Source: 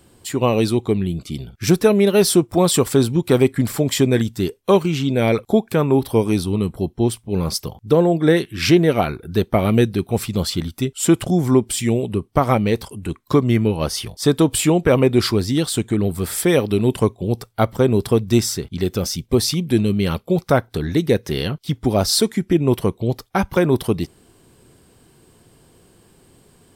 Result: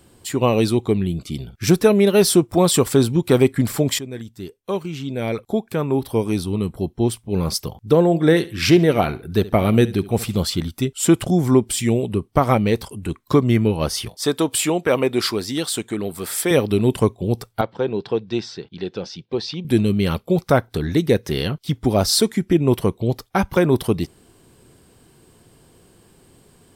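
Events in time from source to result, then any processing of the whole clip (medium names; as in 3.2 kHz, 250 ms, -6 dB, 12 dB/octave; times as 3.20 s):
3.99–7.51 s: fade in linear, from -17 dB
8.05–10.42 s: feedback delay 70 ms, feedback 28%, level -18 dB
14.09–16.51 s: high-pass 450 Hz 6 dB/octave
17.61–19.65 s: cabinet simulation 250–4000 Hz, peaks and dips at 250 Hz -9 dB, 380 Hz -4 dB, 620 Hz -7 dB, 1.2 kHz -9 dB, 2.1 kHz -8 dB, 3.2 kHz -4 dB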